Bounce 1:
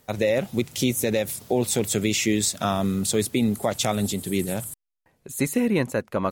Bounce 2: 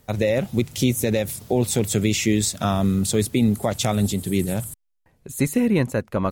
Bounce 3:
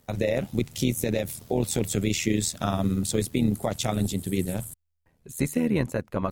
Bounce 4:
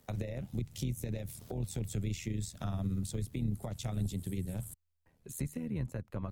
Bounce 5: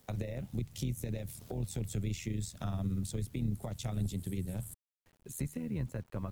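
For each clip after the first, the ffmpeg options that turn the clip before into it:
ffmpeg -i in.wav -af "lowshelf=frequency=140:gain=11.5" out.wav
ffmpeg -i in.wav -af "tremolo=f=80:d=0.667,volume=-2dB" out.wav
ffmpeg -i in.wav -filter_complex "[0:a]acrossover=split=150[link_01][link_02];[link_02]acompressor=threshold=-37dB:ratio=10[link_03];[link_01][link_03]amix=inputs=2:normalize=0,volume=-3.5dB" out.wav
ffmpeg -i in.wav -af "acrusher=bits=10:mix=0:aa=0.000001" out.wav

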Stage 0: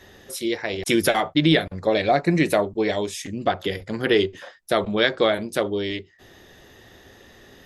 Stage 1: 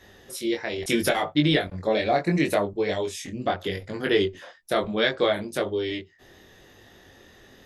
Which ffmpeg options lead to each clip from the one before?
ffmpeg -i in.wav -af "flanger=delay=20:depth=3.5:speed=0.74" out.wav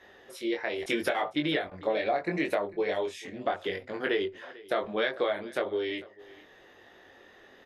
ffmpeg -i in.wav -af "bass=frequency=250:gain=-15,treble=frequency=4000:gain=-14,acompressor=threshold=-24dB:ratio=6,aecho=1:1:447:0.0891" out.wav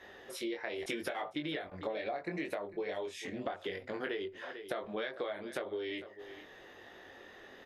ffmpeg -i in.wav -af "acompressor=threshold=-38dB:ratio=4,volume=1.5dB" out.wav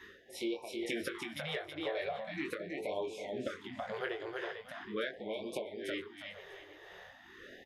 ffmpeg -i in.wav -af "tremolo=f=2:d=0.76,aecho=1:1:324|648|972|1296:0.631|0.183|0.0531|0.0154,afftfilt=real='re*(1-between(b*sr/1024,210*pow(1600/210,0.5+0.5*sin(2*PI*0.41*pts/sr))/1.41,210*pow(1600/210,0.5+0.5*sin(2*PI*0.41*pts/sr))*1.41))':imag='im*(1-between(b*sr/1024,210*pow(1600/210,0.5+0.5*sin(2*PI*0.41*pts/sr))/1.41,210*pow(1600/210,0.5+0.5*sin(2*PI*0.41*pts/sr))*1.41))':win_size=1024:overlap=0.75,volume=2dB" out.wav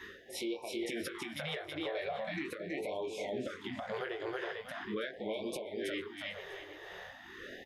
ffmpeg -i in.wav -af "alimiter=level_in=9dB:limit=-24dB:level=0:latency=1:release=209,volume=-9dB,volume=5dB" out.wav

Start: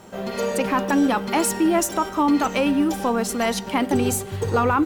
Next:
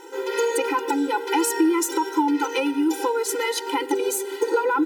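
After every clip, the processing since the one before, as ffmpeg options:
ffmpeg -i in.wav -af "acompressor=threshold=-22dB:ratio=6,afftfilt=real='re*eq(mod(floor(b*sr/1024/260),2),1)':imag='im*eq(mod(floor(b*sr/1024/260),2),1)':win_size=1024:overlap=0.75,volume=6.5dB" out.wav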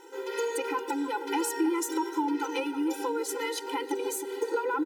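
ffmpeg -i in.wav -filter_complex "[0:a]asplit=2[link_01][link_02];[link_02]adelay=314,lowpass=frequency=1000:poles=1,volume=-8.5dB,asplit=2[link_03][link_04];[link_04]adelay=314,lowpass=frequency=1000:poles=1,volume=0.49,asplit=2[link_05][link_06];[link_06]adelay=314,lowpass=frequency=1000:poles=1,volume=0.49,asplit=2[link_07][link_08];[link_08]adelay=314,lowpass=frequency=1000:poles=1,volume=0.49,asplit=2[link_09][link_10];[link_10]adelay=314,lowpass=frequency=1000:poles=1,volume=0.49,asplit=2[link_11][link_12];[link_12]adelay=314,lowpass=frequency=1000:poles=1,volume=0.49[link_13];[link_01][link_03][link_05][link_07][link_09][link_11][link_13]amix=inputs=7:normalize=0,volume=-8dB" out.wav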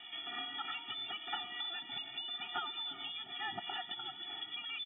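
ffmpeg -i in.wav -filter_complex "[0:a]acrossover=split=150|3000[link_01][link_02][link_03];[link_02]acompressor=threshold=-43dB:ratio=6[link_04];[link_01][link_04][link_03]amix=inputs=3:normalize=0,highshelf=frequency=2300:gain=11.5,lowpass=frequency=3200:width_type=q:width=0.5098,lowpass=frequency=3200:width_type=q:width=0.6013,lowpass=frequency=3200:width_type=q:width=0.9,lowpass=frequency=3200:width_type=q:width=2.563,afreqshift=-3800,volume=-1dB" out.wav

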